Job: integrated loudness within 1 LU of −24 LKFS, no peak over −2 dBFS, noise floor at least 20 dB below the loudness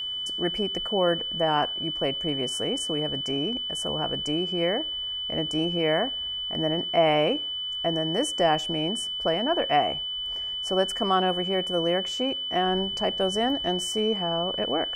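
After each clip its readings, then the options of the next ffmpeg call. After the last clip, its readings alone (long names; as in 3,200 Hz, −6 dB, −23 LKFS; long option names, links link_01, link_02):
interfering tone 3,000 Hz; level of the tone −29 dBFS; integrated loudness −25.5 LKFS; sample peak −10.0 dBFS; target loudness −24.0 LKFS
→ -af "bandreject=frequency=3000:width=30"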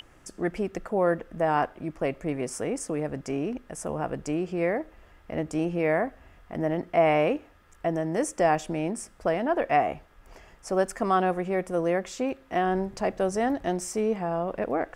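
interfering tone none found; integrated loudness −28.0 LKFS; sample peak −11.0 dBFS; target loudness −24.0 LKFS
→ -af "volume=4dB"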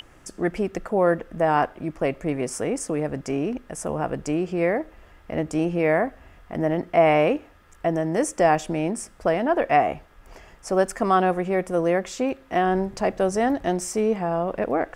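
integrated loudness −24.0 LKFS; sample peak −7.0 dBFS; background noise floor −52 dBFS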